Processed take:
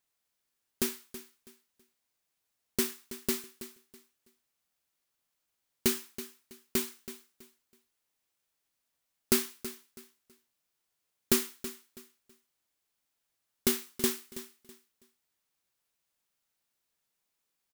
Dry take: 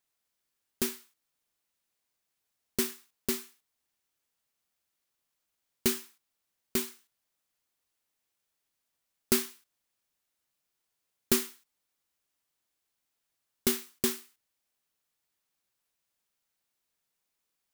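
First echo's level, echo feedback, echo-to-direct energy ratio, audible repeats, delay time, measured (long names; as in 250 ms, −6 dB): −14.0 dB, 26%, −13.5 dB, 2, 326 ms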